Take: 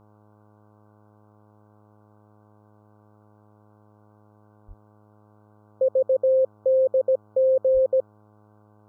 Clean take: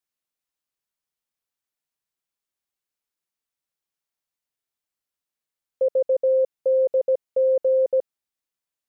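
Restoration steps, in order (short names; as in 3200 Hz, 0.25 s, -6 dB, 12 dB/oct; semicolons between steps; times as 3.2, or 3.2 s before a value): de-hum 105.3 Hz, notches 11; 4.67–4.79 HPF 140 Hz 24 dB/oct; 7.73–7.85 HPF 140 Hz 24 dB/oct; denoiser 30 dB, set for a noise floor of -56 dBFS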